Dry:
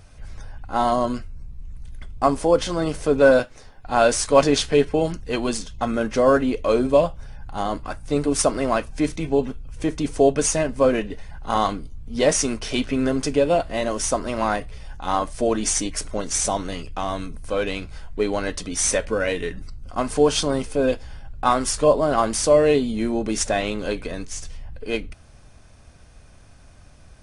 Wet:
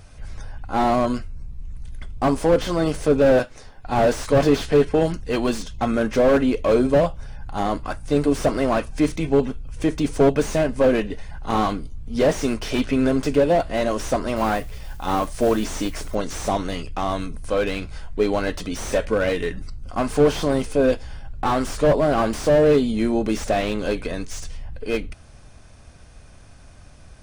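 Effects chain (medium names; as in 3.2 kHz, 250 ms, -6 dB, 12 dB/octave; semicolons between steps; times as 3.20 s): 14.36–16.15 s: modulation noise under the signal 23 dB; slew-rate limiter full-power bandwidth 93 Hz; trim +2.5 dB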